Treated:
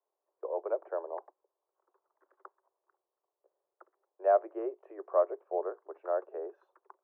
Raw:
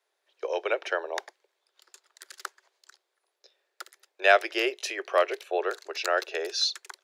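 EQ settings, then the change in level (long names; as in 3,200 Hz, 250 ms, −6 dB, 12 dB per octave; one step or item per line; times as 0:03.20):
elliptic band-pass filter 300–1,100 Hz, stop band 60 dB
dynamic equaliser 610 Hz, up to +4 dB, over −34 dBFS, Q 4.5
−5.5 dB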